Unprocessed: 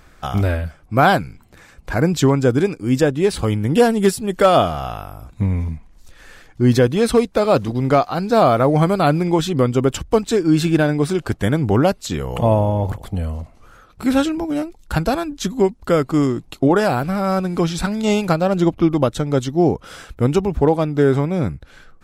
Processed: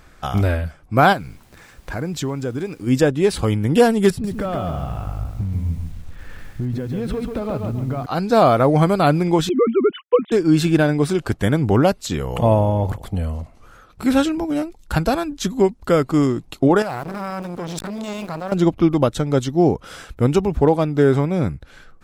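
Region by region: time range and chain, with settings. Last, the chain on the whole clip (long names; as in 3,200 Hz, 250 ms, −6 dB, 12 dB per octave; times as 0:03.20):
0:01.12–0:02.86: downward compressor 2 to 1, threshold −28 dBFS + background noise pink −55 dBFS
0:04.10–0:08.06: bass and treble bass +11 dB, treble −13 dB + downward compressor, threshold −22 dBFS + feedback echo at a low word length 139 ms, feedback 35%, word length 8 bits, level −4.5 dB
0:09.49–0:10.32: three sine waves on the formant tracks + noise gate −41 dBFS, range −13 dB
0:16.82–0:18.52: converter with a step at zero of −29.5 dBFS + output level in coarse steps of 12 dB + saturating transformer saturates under 760 Hz
whole clip: no processing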